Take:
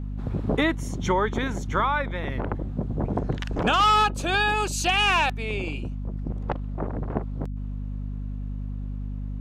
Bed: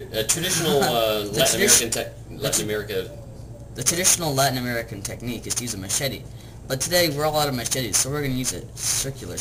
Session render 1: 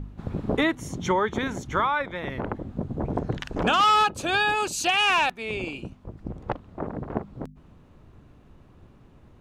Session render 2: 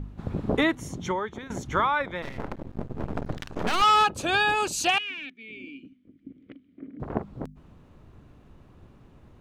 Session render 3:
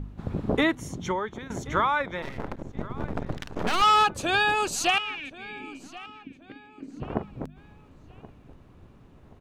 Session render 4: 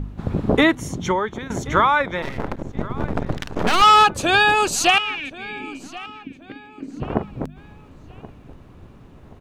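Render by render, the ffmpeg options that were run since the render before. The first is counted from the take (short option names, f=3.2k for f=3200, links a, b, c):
-af "bandreject=f=50:t=h:w=4,bandreject=f=100:t=h:w=4,bandreject=f=150:t=h:w=4,bandreject=f=200:t=h:w=4,bandreject=f=250:t=h:w=4"
-filter_complex "[0:a]asettb=1/sr,asplit=3[a][b][c];[a]atrim=end=2.224[d];[b]atrim=start=2.22:end=3.82,asetpts=PTS-STARTPTS,afade=t=in:d=0.004:c=qsin,afade=t=out:st=1.596:d=0.004:c=qsin,aeval=exprs='max(val(0),0)':c=same[e];[c]atrim=start=3.816[f];[d][e]acrossfade=d=0.004:c1=hsin:c2=qsin[g];[g][f]acrossfade=d=0.004:c1=qsin:c2=hsin,asettb=1/sr,asplit=3[h][i][j];[h]atrim=end=4.984[k];[i]atrim=start=4.98:end=7,asetpts=PTS-STARTPTS,afade=t=in:d=0.004:c=qsin,afade=t=out:st=2.016:d=0.004:c=qsin,asplit=3[l][m][n];[l]bandpass=f=270:t=q:w=8,volume=0dB[o];[m]bandpass=f=2.29k:t=q:w=8,volume=-6dB[p];[n]bandpass=f=3.01k:t=q:w=8,volume=-9dB[q];[o][p][q]amix=inputs=3:normalize=0[r];[j]atrim=start=6.996[s];[k][r]acrossfade=d=0.004:c1=hsin:c2=qsin[t];[t][s]acrossfade=d=0.004:c1=qsin:c2=hsin,asplit=2[u][v];[u]atrim=end=1.5,asetpts=PTS-STARTPTS,afade=t=out:st=0.71:d=0.79:silence=0.158489[w];[v]atrim=start=1.5,asetpts=PTS-STARTPTS,afade=t=in:d=0.004:c=hsin:silence=0.158489[x];[w][x]concat=n=2:v=0:a=1"
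-filter_complex "[0:a]asplit=2[a][b];[b]adelay=1078,lowpass=f=5k:p=1,volume=-19dB,asplit=2[c][d];[d]adelay=1078,lowpass=f=5k:p=1,volume=0.36,asplit=2[e][f];[f]adelay=1078,lowpass=f=5k:p=1,volume=0.36[g];[a][c][e][g]amix=inputs=4:normalize=0"
-af "volume=7.5dB,alimiter=limit=-3dB:level=0:latency=1"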